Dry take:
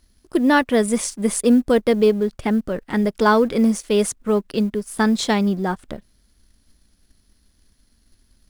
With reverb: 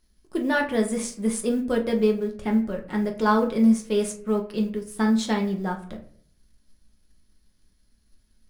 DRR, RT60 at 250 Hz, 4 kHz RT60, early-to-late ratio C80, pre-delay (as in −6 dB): 1.0 dB, 0.65 s, 0.30 s, 15.0 dB, 5 ms